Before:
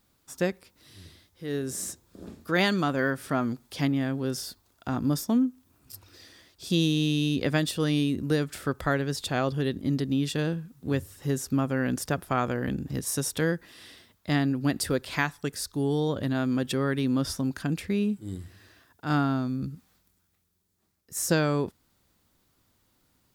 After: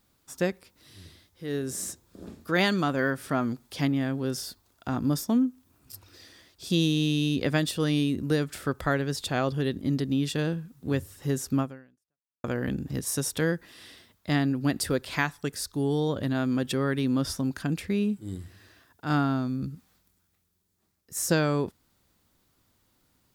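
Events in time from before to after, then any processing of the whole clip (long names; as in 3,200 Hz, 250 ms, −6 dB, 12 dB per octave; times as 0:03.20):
0:11.61–0:12.44: fade out exponential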